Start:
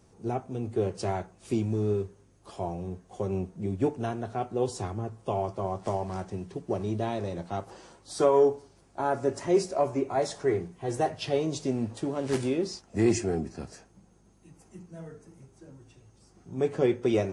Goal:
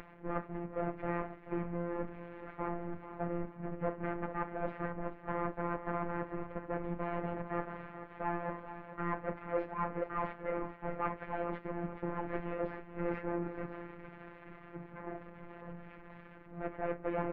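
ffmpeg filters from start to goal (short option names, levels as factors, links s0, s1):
-filter_complex "[0:a]aeval=exprs='val(0)+0.5*0.0251*sgn(val(0))':c=same,areverse,acompressor=threshold=0.0141:ratio=6,areverse,aeval=exprs='abs(val(0))':c=same,asplit=2[s0][s1];[s1]aecho=0:1:434|868|1302:0.266|0.0825|0.0256[s2];[s0][s2]amix=inputs=2:normalize=0,highpass=f=260:t=q:w=0.5412,highpass=f=260:t=q:w=1.307,lowpass=f=2400:t=q:w=0.5176,lowpass=f=2400:t=q:w=0.7071,lowpass=f=2400:t=q:w=1.932,afreqshift=-240,afftfilt=real='hypot(re,im)*cos(PI*b)':imag='0':win_size=1024:overlap=0.75,volume=5.01"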